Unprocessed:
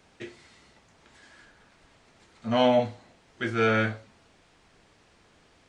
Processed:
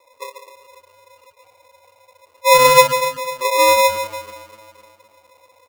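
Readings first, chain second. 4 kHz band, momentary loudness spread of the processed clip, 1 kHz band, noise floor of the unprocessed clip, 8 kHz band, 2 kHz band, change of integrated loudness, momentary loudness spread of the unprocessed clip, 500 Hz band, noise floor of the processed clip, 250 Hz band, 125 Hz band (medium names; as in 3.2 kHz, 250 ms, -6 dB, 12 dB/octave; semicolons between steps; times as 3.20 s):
+15.5 dB, 16 LU, +16.5 dB, -61 dBFS, no reading, +11.5 dB, +11.5 dB, 22 LU, +11.0 dB, -57 dBFS, -8.5 dB, -2.5 dB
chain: backward echo that repeats 127 ms, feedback 72%, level -12 dB; peaking EQ 220 Hz +13 dB 0.54 oct; feedback comb 670 Hz, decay 0.25 s, harmonics odd, mix 60%; feedback delay 142 ms, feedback 35%, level -8 dB; spectral gate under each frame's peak -10 dB strong; tilt EQ -2 dB/octave; small resonant body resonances 240/2000/3700 Hz, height 13 dB, ringing for 45 ms; wow and flutter 18 cents; polarity switched at an audio rate 760 Hz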